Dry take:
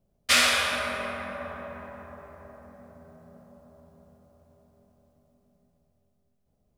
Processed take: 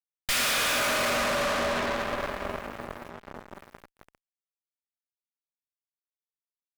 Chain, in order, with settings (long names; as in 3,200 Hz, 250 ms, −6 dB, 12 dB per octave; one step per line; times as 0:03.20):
Butterworth high-pass 220 Hz 36 dB per octave
single-tap delay 108 ms −16 dB
half-wave rectification
0:03.08–0:03.53: low-pass filter 3,200 Hz → 6,200 Hz 6 dB per octave
fuzz pedal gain 43 dB, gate −51 dBFS
level −7.5 dB